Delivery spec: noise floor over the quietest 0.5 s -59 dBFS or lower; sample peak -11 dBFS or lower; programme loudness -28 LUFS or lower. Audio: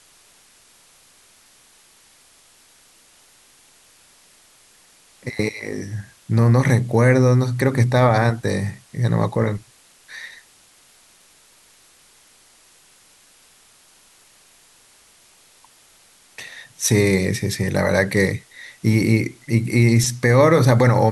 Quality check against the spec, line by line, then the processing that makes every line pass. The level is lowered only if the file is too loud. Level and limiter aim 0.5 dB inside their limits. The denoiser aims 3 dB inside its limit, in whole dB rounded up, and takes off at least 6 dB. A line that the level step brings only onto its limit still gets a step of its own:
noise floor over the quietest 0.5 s -53 dBFS: fail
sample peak -4.5 dBFS: fail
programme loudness -18.5 LUFS: fail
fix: trim -10 dB

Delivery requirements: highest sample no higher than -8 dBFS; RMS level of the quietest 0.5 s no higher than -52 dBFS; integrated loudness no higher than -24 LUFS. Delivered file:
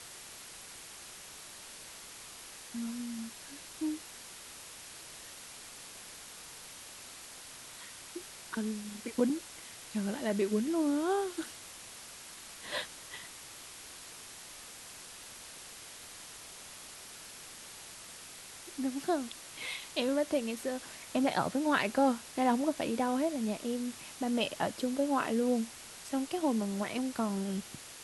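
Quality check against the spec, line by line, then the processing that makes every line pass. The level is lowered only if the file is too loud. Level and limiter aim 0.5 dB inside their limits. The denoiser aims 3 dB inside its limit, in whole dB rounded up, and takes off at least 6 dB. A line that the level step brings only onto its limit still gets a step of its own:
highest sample -15.0 dBFS: pass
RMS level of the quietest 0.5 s -49 dBFS: fail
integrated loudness -36.0 LUFS: pass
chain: noise reduction 6 dB, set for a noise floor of -49 dBFS

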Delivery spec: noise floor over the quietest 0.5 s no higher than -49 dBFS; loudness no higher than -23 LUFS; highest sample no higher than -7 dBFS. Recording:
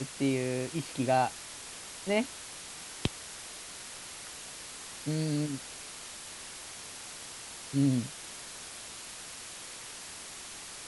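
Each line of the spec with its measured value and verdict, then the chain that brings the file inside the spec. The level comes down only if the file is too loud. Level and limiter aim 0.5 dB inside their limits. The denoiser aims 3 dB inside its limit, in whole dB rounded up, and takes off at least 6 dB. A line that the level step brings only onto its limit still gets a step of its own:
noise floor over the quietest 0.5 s -45 dBFS: fail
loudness -35.5 LUFS: pass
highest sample -12.0 dBFS: pass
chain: noise reduction 7 dB, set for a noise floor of -45 dBFS

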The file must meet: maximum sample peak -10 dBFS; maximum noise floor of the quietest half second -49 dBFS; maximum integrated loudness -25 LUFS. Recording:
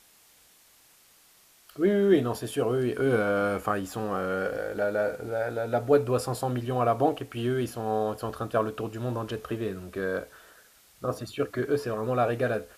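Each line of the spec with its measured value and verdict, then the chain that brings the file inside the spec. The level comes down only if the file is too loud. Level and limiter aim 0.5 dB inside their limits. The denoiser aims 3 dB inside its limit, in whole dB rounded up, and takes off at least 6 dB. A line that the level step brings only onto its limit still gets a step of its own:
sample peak -9.0 dBFS: fail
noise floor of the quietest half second -59 dBFS: pass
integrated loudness -28.0 LUFS: pass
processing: peak limiter -10.5 dBFS

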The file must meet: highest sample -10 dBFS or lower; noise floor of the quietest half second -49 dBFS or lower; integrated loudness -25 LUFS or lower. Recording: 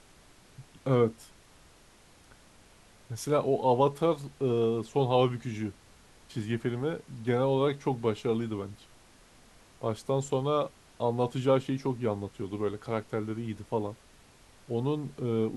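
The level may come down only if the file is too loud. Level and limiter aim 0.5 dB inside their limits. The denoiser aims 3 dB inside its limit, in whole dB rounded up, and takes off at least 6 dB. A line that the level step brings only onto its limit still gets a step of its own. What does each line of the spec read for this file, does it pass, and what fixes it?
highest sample -11.5 dBFS: pass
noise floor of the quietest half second -58 dBFS: pass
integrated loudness -30.0 LUFS: pass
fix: none needed

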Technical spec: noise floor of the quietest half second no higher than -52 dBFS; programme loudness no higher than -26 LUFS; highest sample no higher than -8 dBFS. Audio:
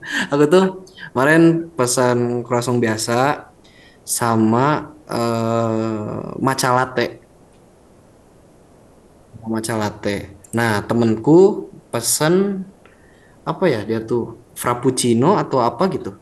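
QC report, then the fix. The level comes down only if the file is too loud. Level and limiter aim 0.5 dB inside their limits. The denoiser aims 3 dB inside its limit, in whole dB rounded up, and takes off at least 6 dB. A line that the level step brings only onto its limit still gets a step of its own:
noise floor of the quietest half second -49 dBFS: fail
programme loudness -18.0 LUFS: fail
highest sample -2.5 dBFS: fail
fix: trim -8.5 dB

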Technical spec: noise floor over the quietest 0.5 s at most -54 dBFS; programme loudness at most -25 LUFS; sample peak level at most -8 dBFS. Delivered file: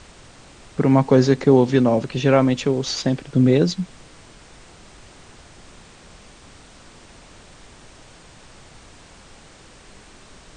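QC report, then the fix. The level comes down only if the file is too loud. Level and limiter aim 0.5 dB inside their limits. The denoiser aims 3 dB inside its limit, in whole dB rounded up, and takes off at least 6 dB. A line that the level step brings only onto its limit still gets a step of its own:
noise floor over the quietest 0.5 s -46 dBFS: fail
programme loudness -18.0 LUFS: fail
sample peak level -3.0 dBFS: fail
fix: noise reduction 6 dB, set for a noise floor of -46 dBFS; trim -7.5 dB

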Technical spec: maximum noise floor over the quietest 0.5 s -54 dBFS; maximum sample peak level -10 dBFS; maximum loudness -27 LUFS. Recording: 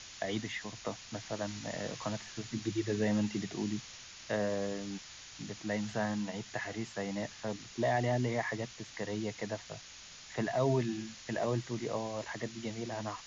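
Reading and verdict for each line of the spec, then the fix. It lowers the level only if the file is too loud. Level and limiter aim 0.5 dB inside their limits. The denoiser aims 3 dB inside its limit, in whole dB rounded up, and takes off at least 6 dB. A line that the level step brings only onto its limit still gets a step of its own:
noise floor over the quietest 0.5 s -51 dBFS: fail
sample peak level -19.0 dBFS: pass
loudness -36.5 LUFS: pass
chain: noise reduction 6 dB, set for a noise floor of -51 dBFS

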